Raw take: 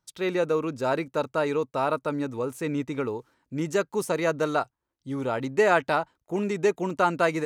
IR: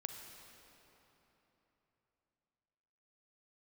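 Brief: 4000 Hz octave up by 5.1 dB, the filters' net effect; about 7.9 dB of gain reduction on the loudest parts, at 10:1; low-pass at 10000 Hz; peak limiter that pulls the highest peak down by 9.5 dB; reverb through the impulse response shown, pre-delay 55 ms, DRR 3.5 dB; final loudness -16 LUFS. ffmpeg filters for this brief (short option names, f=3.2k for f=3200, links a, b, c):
-filter_complex "[0:a]lowpass=10k,equalizer=f=4k:t=o:g=6,acompressor=threshold=-24dB:ratio=10,alimiter=level_in=0.5dB:limit=-24dB:level=0:latency=1,volume=-0.5dB,asplit=2[a][b];[1:a]atrim=start_sample=2205,adelay=55[c];[b][c]afir=irnorm=-1:irlink=0,volume=-1.5dB[d];[a][d]amix=inputs=2:normalize=0,volume=16.5dB"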